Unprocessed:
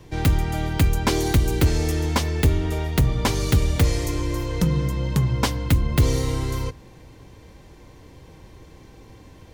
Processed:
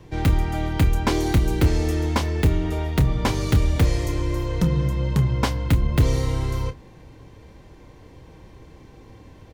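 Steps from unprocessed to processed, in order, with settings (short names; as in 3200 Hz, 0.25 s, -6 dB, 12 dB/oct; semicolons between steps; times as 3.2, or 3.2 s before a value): high shelf 4000 Hz -7 dB; doubler 29 ms -10.5 dB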